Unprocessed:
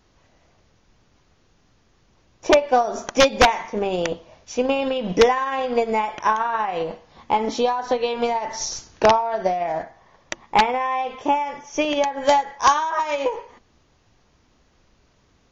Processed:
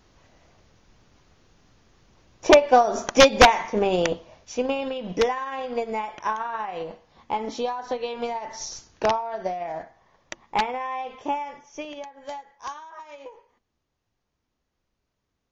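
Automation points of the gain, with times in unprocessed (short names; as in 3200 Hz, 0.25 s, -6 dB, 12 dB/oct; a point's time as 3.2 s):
3.97 s +1.5 dB
4.98 s -7 dB
11.45 s -7 dB
12.13 s -19 dB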